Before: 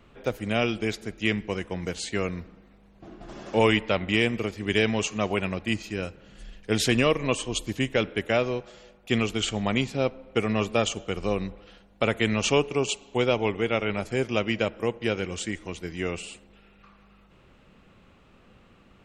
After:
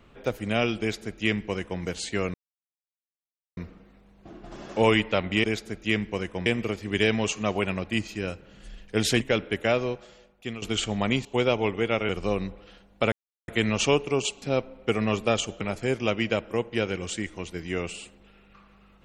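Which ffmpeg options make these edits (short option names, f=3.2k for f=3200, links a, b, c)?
-filter_complex "[0:a]asplit=11[a][b][c][d][e][f][g][h][i][j][k];[a]atrim=end=2.34,asetpts=PTS-STARTPTS,afade=t=out:st=2.336:d=0.004:c=hsin,apad=pad_dur=1.23[l];[b]atrim=start=2.34:end=4.212,asetpts=PTS-STARTPTS,afade=t=in:d=0.004:c=hsin[m];[c]atrim=start=0.798:end=1.822[n];[d]atrim=start=4.208:end=6.962[o];[e]atrim=start=7.858:end=9.27,asetpts=PTS-STARTPTS,afade=t=out:st=0.702:d=0.71:silence=0.16788[p];[f]atrim=start=9.27:end=9.902,asetpts=PTS-STARTPTS,afade=t=in:d=0.004:c=hsin:silence=0.16788[q];[g]atrim=start=13.058:end=13.902[r];[h]atrim=start=11.088:end=12.12,asetpts=PTS-STARTPTS,afade=t=out:st=1.028:d=0.004:c=hsin,apad=pad_dur=0.36[s];[i]atrim=start=12.12:end=13.062,asetpts=PTS-STARTPTS,afade=t=in:d=0.004:c=hsin[t];[j]atrim=start=9.898:end=11.092[u];[k]atrim=start=13.898[v];[l][m]concat=n=2:v=0:a=1[w];[w][n]acrossfade=d=0.004:c1=hsin:c2=hsin[x];[x][o]acrossfade=d=0.004:c1=hsin:c2=hsin[y];[p][q]concat=n=2:v=0:a=1[z];[y][z]acrossfade=d=0.004:c1=hsin:c2=hsin[aa];[aa][r]acrossfade=d=0.004:c1=hsin:c2=hsin[ab];[s][t]concat=n=2:v=0:a=1[ac];[ab][ac]acrossfade=d=0.004:c1=hsin:c2=hsin[ad];[ad][u]acrossfade=d=0.004:c1=hsin:c2=hsin[ae];[ae][v]acrossfade=d=0.004:c1=hsin:c2=hsin"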